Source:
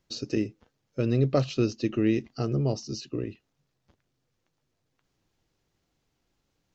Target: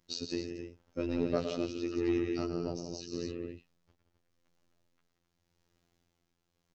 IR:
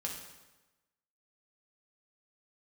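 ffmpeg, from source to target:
-filter_complex "[0:a]asplit=2[s0][s1];[s1]acompressor=threshold=0.0316:ratio=6,volume=1.12[s2];[s0][s2]amix=inputs=2:normalize=0,aecho=1:1:110.8|174.9|259.5:0.398|0.447|0.447,tremolo=f=0.86:d=0.49,asoftclip=type=tanh:threshold=0.266,afftfilt=real='hypot(re,im)*cos(PI*b)':imag='0':win_size=2048:overlap=0.75,volume=0.596"

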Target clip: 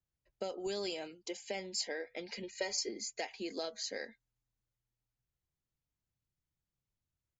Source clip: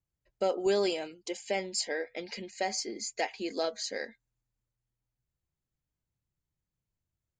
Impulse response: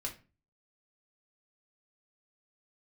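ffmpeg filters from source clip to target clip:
-filter_complex "[0:a]acrossover=split=150|3000[s0][s1][s2];[s1]acompressor=threshold=0.0224:ratio=6[s3];[s0][s3][s2]amix=inputs=3:normalize=0,asettb=1/sr,asplit=3[s4][s5][s6];[s4]atrim=end=2.434[s7];[s5]atrim=start=2.43:end=2.89,asetpts=PTS-STARTPTS,afade=t=in:d=0.004:c=qsin,afade=t=out:st=0.456:d=0.004:c=qsin,aecho=1:1:2.1:0.96,atrim=end_sample=20286[s8];[s6]atrim=start=2.886[s9];[s7][s8]acrossfade=d=0.004:c1=hsin:c2=qsin[s10];[s10][s9]acrossfade=d=0.004:c1=qsin:c2=hsin,aresample=16000,aresample=44100,volume=0.668"

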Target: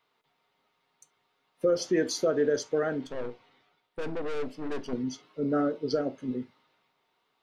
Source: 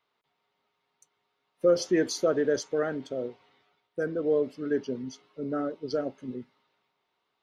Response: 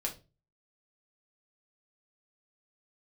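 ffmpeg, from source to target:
-filter_complex "[0:a]asettb=1/sr,asplit=3[s0][s1][s2];[s0]atrim=end=3.044[s3];[s1]atrim=start=3.04:end=4.93,asetpts=PTS-STARTPTS,afade=t=in:d=0.004:c=qsin,afade=t=out:st=1.886:d=0.004:c=qsin,aeval=exprs='(tanh(63.1*val(0)+0.6)-tanh(0.6))/63.1':c=same[s4];[s2]atrim=start=4.926[s5];[s3][s4]acrossfade=d=0.004:c1=hsin:c2=qsin[s6];[s6][s5]acrossfade=d=0.004:c1=qsin:c2=hsin,alimiter=limit=0.0944:level=0:latency=1:release=428,asplit=2[s7][s8];[1:a]atrim=start_sample=2205,atrim=end_sample=3528[s9];[s8][s9]afir=irnorm=-1:irlink=0,volume=0.398[s10];[s7][s10]amix=inputs=2:normalize=0,volume=1.12"

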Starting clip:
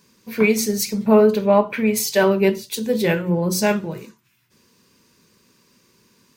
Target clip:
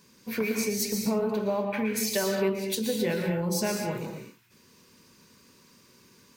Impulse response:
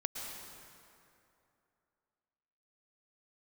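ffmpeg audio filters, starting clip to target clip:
-filter_complex "[0:a]acompressor=threshold=0.0562:ratio=6[s0];[1:a]atrim=start_sample=2205,afade=t=out:st=0.31:d=0.01,atrim=end_sample=14112[s1];[s0][s1]afir=irnorm=-1:irlink=0"

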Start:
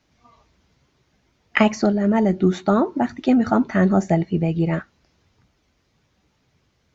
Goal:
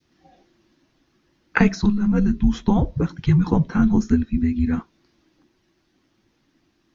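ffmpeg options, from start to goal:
-af "afreqshift=-410,adynamicequalizer=threshold=0.0126:dfrequency=1100:dqfactor=0.73:tfrequency=1100:tqfactor=0.73:attack=5:release=100:ratio=0.375:range=2.5:mode=cutabove:tftype=bell"

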